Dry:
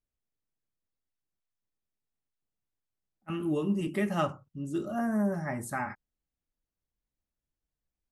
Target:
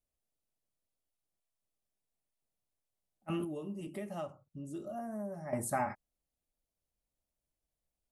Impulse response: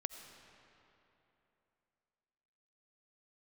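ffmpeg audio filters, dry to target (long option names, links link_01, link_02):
-filter_complex "[0:a]equalizer=frequency=630:width_type=o:width=0.67:gain=8,equalizer=frequency=1600:width_type=o:width=0.67:gain=-5,equalizer=frequency=10000:width_type=o:width=0.67:gain=6,asettb=1/sr,asplit=3[link_01][link_02][link_03];[link_01]atrim=end=3.444[link_04];[link_02]atrim=start=3.44:end=5.53,asetpts=PTS-STARTPTS,afade=type=in:duration=0.004:curve=qsin,afade=type=out:start_time=2.086:duration=0.004:curve=qsin,acompressor=threshold=-43dB:ratio=2.5[link_05];[link_03]atrim=start=5.526[link_06];[link_04][link_05]acrossfade=duration=0.004:curve1=hsin:curve2=qsin[link_07];[link_07][link_06]acrossfade=duration=0.004:curve1=qsin:curve2=hsin,volume=-1.5dB"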